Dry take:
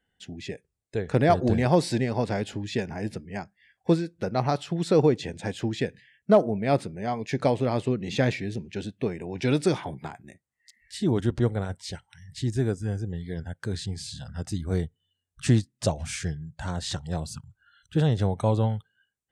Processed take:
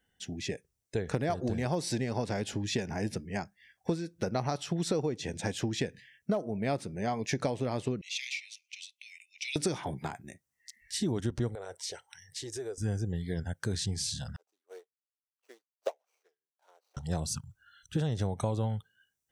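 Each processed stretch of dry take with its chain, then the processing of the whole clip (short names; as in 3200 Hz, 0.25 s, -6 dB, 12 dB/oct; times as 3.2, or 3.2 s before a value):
8.01–9.56 steep high-pass 2100 Hz 96 dB/oct + high shelf 6000 Hz -8 dB
11.55–12.78 HPF 85 Hz + resonant low shelf 310 Hz -12 dB, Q 3 + compressor 3:1, threshold -39 dBFS
14.36–16.97 median filter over 25 samples + elliptic high-pass 430 Hz, stop band 80 dB + upward expander 2.5:1, over -45 dBFS
whole clip: bell 5800 Hz +7.5 dB 0.21 oct; compressor 10:1, threshold -27 dBFS; high shelf 8500 Hz +9.5 dB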